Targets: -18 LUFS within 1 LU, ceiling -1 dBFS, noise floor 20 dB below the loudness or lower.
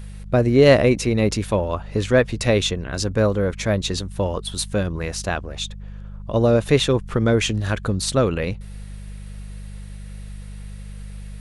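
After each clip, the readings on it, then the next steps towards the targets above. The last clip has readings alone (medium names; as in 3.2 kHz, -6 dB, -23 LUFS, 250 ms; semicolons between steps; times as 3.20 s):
hum 50 Hz; highest harmonic 200 Hz; hum level -32 dBFS; loudness -20.5 LUFS; peak level -2.0 dBFS; loudness target -18.0 LUFS
-> de-hum 50 Hz, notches 4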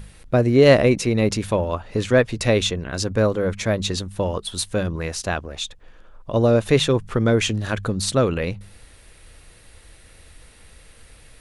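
hum not found; loudness -21.0 LUFS; peak level -2.5 dBFS; loudness target -18.0 LUFS
-> trim +3 dB; peak limiter -1 dBFS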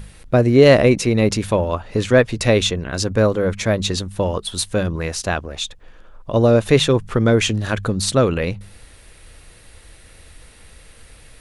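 loudness -18.0 LUFS; peak level -1.0 dBFS; noise floor -46 dBFS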